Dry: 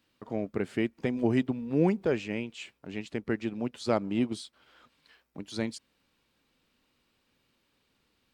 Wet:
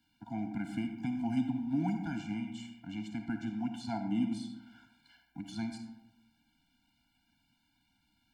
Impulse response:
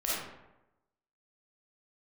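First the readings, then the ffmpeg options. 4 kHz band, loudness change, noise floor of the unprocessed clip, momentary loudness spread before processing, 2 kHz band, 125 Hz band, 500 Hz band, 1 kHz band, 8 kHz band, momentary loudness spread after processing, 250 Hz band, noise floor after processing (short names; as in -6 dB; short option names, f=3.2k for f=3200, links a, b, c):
-7.0 dB, -5.5 dB, -74 dBFS, 14 LU, -8.5 dB, -5.0 dB, -19.0 dB, -4.0 dB, -7.5 dB, 13 LU, -3.0 dB, -75 dBFS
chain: -filter_complex "[0:a]acrossover=split=150|1300|5100[a][b][c][d];[a]acompressor=threshold=-50dB:ratio=4[e];[b]acompressor=threshold=-26dB:ratio=4[f];[c]acompressor=threshold=-49dB:ratio=4[g];[d]acompressor=threshold=-55dB:ratio=4[h];[e][f][g][h]amix=inputs=4:normalize=0,asplit=2[i][j];[1:a]atrim=start_sample=2205[k];[j][k]afir=irnorm=-1:irlink=0,volume=-9dB[l];[i][l]amix=inputs=2:normalize=0,afftfilt=real='re*eq(mod(floor(b*sr/1024/340),2),0)':imag='im*eq(mod(floor(b*sr/1024/340),2),0)':win_size=1024:overlap=0.75,volume=-2.5dB"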